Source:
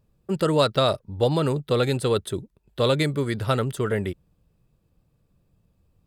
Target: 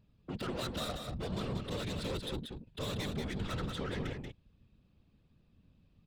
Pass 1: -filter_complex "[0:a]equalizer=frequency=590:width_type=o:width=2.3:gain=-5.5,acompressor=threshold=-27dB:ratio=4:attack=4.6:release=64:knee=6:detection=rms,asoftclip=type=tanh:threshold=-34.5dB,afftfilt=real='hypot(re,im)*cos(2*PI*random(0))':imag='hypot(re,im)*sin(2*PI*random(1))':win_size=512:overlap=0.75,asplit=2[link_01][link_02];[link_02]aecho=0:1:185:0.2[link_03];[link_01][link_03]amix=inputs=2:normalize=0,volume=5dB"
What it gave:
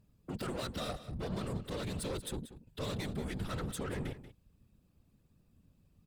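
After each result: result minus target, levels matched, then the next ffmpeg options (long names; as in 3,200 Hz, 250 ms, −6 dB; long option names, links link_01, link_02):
echo-to-direct −8.5 dB; 4,000 Hz band −3.0 dB
-filter_complex "[0:a]equalizer=frequency=590:width_type=o:width=2.3:gain=-5.5,acompressor=threshold=-27dB:ratio=4:attack=4.6:release=64:knee=6:detection=rms,asoftclip=type=tanh:threshold=-34.5dB,afftfilt=real='hypot(re,im)*cos(2*PI*random(0))':imag='hypot(re,im)*sin(2*PI*random(1))':win_size=512:overlap=0.75,asplit=2[link_01][link_02];[link_02]aecho=0:1:185:0.531[link_03];[link_01][link_03]amix=inputs=2:normalize=0,volume=5dB"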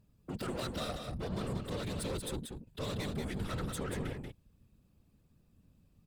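4,000 Hz band −2.5 dB
-filter_complex "[0:a]equalizer=frequency=590:width_type=o:width=2.3:gain=-5.5,acompressor=threshold=-27dB:ratio=4:attack=4.6:release=64:knee=6:detection=rms,lowpass=frequency=3600:width_type=q:width=1.6,asoftclip=type=tanh:threshold=-34.5dB,afftfilt=real='hypot(re,im)*cos(2*PI*random(0))':imag='hypot(re,im)*sin(2*PI*random(1))':win_size=512:overlap=0.75,asplit=2[link_01][link_02];[link_02]aecho=0:1:185:0.531[link_03];[link_01][link_03]amix=inputs=2:normalize=0,volume=5dB"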